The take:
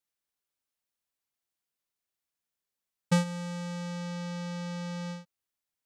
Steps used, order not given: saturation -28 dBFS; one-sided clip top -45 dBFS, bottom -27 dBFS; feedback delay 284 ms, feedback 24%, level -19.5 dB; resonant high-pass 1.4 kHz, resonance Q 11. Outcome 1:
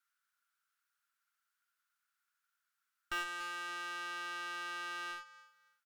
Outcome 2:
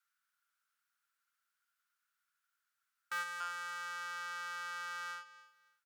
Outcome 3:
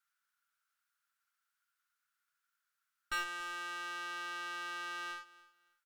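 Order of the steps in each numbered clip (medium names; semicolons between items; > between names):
feedback delay > saturation > resonant high-pass > one-sided clip; feedback delay > one-sided clip > saturation > resonant high-pass; resonant high-pass > one-sided clip > saturation > feedback delay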